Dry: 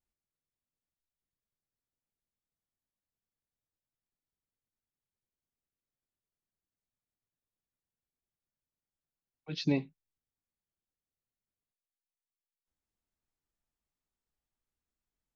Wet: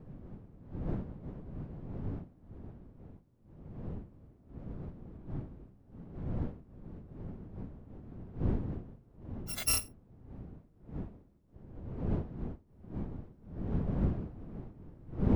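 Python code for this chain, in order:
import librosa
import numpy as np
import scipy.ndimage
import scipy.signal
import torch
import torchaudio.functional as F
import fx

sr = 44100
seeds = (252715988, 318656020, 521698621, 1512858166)

y = fx.bit_reversed(x, sr, seeds[0], block=256)
y = fx.dmg_wind(y, sr, seeds[1], corner_hz=190.0, level_db=-43.0)
y = fx.high_shelf(y, sr, hz=5300.0, db=-7.0)
y = y * 10.0 ** (4.0 / 20.0)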